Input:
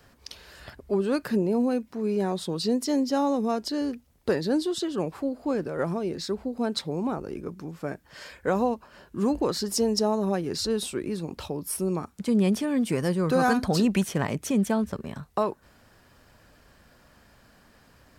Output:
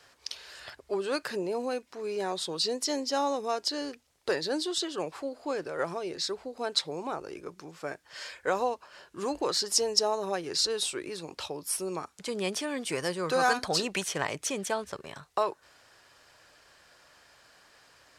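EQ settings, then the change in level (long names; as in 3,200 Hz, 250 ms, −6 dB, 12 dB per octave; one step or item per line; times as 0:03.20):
high-frequency loss of the air 85 metres
RIAA equalisation recording
parametric band 220 Hz −11.5 dB 0.5 octaves
0.0 dB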